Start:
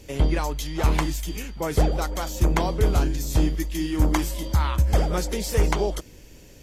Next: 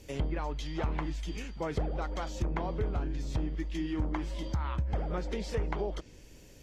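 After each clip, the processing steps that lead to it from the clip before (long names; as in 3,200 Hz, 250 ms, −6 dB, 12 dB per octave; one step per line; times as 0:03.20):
downward compressor 5 to 1, threshold −22 dBFS, peak gain reduction 7.5 dB
treble cut that deepens with the level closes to 2,200 Hz, closed at −22 dBFS
level −6 dB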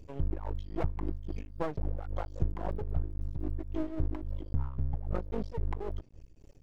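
expanding power law on the bin magnitudes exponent 1.8
half-wave rectification
amplitude tremolo 3.7 Hz, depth 63%
level +6 dB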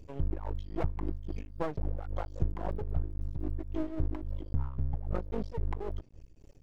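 no processing that can be heard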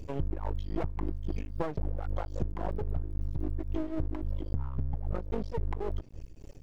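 downward compressor, threshold −35 dBFS, peak gain reduction 13 dB
level +8 dB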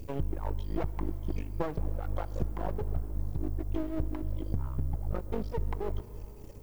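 background noise violet −65 dBFS
convolution reverb RT60 5.8 s, pre-delay 52 ms, DRR 15.5 dB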